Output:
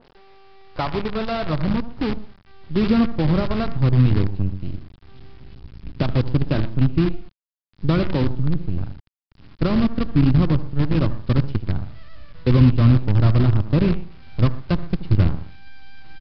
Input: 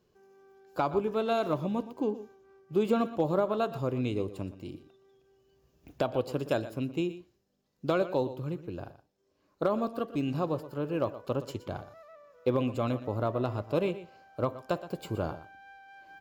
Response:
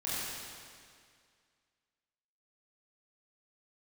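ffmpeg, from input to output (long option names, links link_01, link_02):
-filter_complex "[0:a]acontrast=25,asplit=2[link_01][link_02];[link_02]adelay=78,lowpass=frequency=3100:poles=1,volume=-11dB,asplit=2[link_03][link_04];[link_04]adelay=78,lowpass=frequency=3100:poles=1,volume=0.23,asplit=2[link_05][link_06];[link_06]adelay=78,lowpass=frequency=3100:poles=1,volume=0.23[link_07];[link_03][link_05][link_07]amix=inputs=3:normalize=0[link_08];[link_01][link_08]amix=inputs=2:normalize=0,acompressor=mode=upward:threshold=-37dB:ratio=2.5,aresample=16000,acrusher=bits=5:dc=4:mix=0:aa=0.000001,aresample=44100,asubboost=boost=10.5:cutoff=170,aresample=11025,aresample=44100,adynamicequalizer=threshold=0.01:dfrequency=1800:dqfactor=0.7:tfrequency=1800:tqfactor=0.7:attack=5:release=100:ratio=0.375:range=1.5:mode=cutabove:tftype=highshelf,volume=-1dB"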